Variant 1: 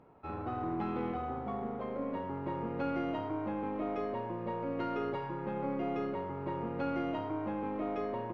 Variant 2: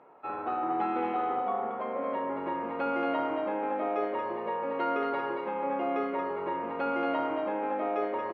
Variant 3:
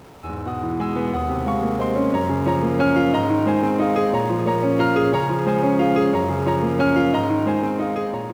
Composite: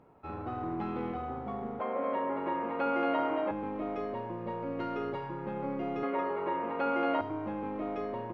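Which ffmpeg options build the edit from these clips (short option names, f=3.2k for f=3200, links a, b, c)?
-filter_complex "[1:a]asplit=2[a][b];[0:a]asplit=3[c][d][e];[c]atrim=end=1.802[f];[a]atrim=start=1.798:end=3.512[g];[d]atrim=start=3.508:end=6.032[h];[b]atrim=start=6.028:end=7.212[i];[e]atrim=start=7.208[j];[f][g]acrossfade=d=0.004:c1=hsin:c2=hsin[k];[k][h]acrossfade=d=0.004:c1=hsin:c2=hsin[l];[l][i]acrossfade=d=0.004:c1=hsin:c2=hsin[m];[m][j]acrossfade=d=0.004:c1=hsin:c2=hsin"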